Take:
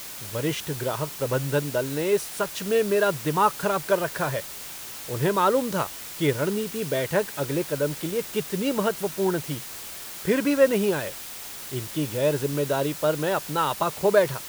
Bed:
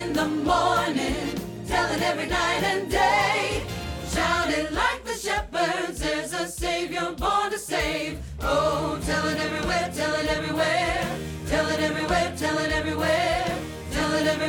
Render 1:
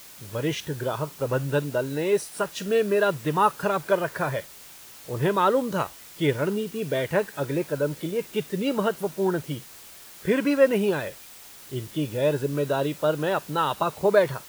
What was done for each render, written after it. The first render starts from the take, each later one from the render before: noise print and reduce 8 dB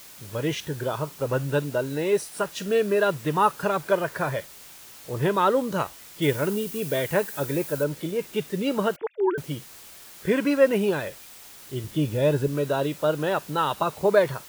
6.22–7.84 high shelf 7500 Hz +10.5 dB; 8.96–9.38 sine-wave speech; 11.84–12.48 low shelf 200 Hz +7.5 dB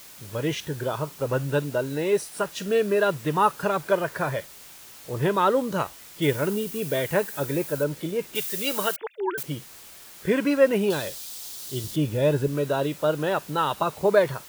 8.35–9.43 tilt +4 dB/oct; 10.9–11.96 resonant high shelf 3000 Hz +8 dB, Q 1.5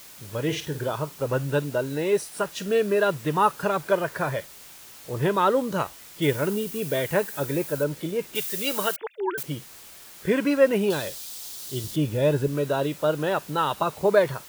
0.43–0.9 flutter echo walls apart 8.9 m, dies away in 0.29 s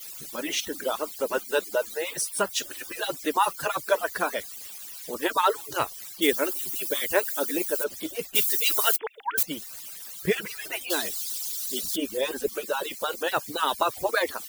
median-filter separation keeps percussive; high shelf 2900 Hz +11 dB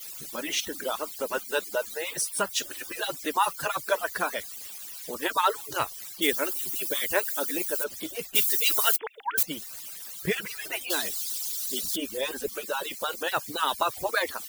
dynamic EQ 380 Hz, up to -5 dB, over -35 dBFS, Q 0.74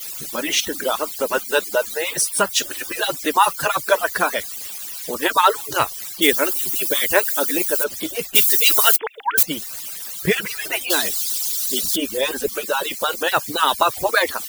gain +9 dB; limiter -1 dBFS, peak gain reduction 1 dB

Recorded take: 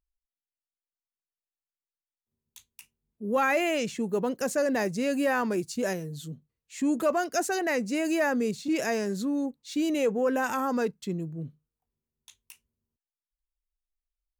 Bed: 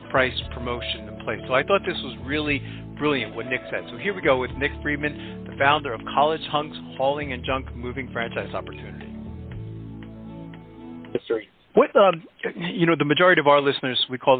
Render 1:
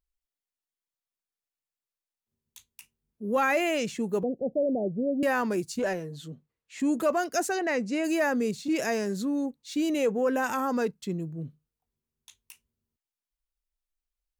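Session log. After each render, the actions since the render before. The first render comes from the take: 4.23–5.23 steep low-pass 730 Hz 72 dB/oct; 5.79–6.8 overdrive pedal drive 12 dB, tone 1600 Hz, clips at -18.5 dBFS; 7.52–8.04 air absorption 63 m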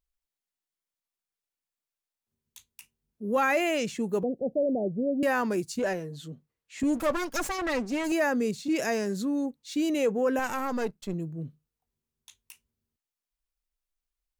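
6.83–8.12 minimum comb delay 3.6 ms; 10.39–11.14 half-wave gain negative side -7 dB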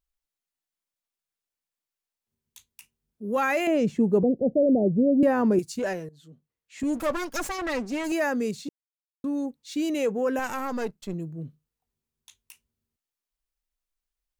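3.67–5.59 tilt shelf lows +10 dB; 6.09–6.98 fade in, from -16 dB; 8.69–9.24 mute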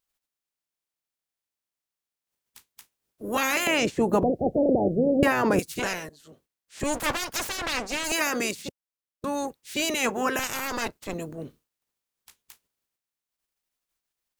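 spectral limiter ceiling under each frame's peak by 24 dB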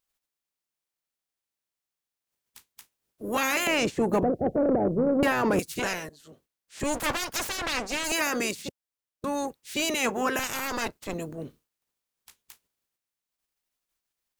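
soft clip -16 dBFS, distortion -18 dB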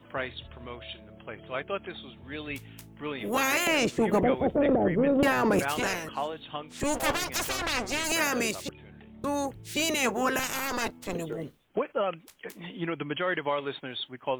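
add bed -13 dB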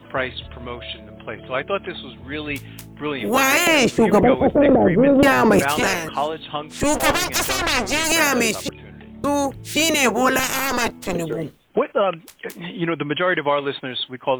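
gain +9.5 dB

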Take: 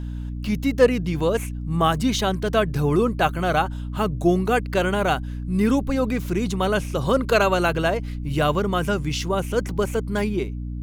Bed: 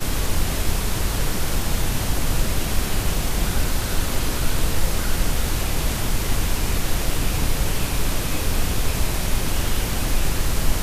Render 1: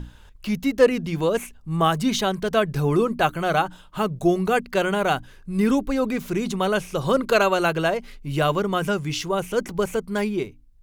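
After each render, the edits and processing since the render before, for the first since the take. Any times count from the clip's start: notches 60/120/180/240/300 Hz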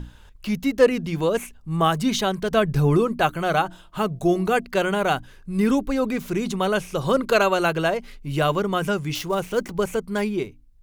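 2.52–2.98 low shelf 170 Hz +7.5 dB; 3.57–4.66 de-hum 339.5 Hz, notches 2; 9.15–9.71 switching dead time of 0.056 ms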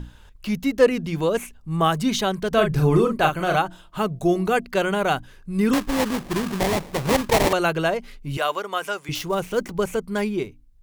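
2.54–3.56 doubler 39 ms -5 dB; 5.73–7.53 sample-rate reducer 1400 Hz, jitter 20%; 8.37–9.09 HPF 600 Hz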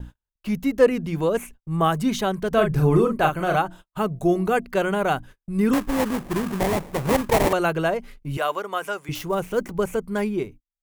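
gate -39 dBFS, range -42 dB; bell 4300 Hz -6.5 dB 1.7 oct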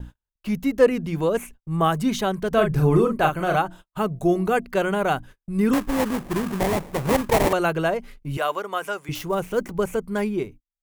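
nothing audible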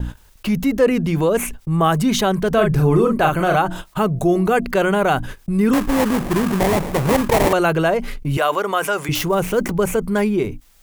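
fast leveller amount 50%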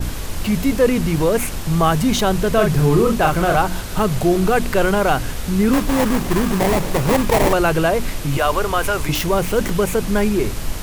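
add bed -4.5 dB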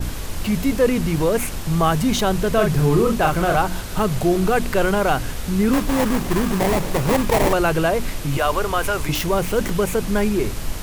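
gain -2 dB

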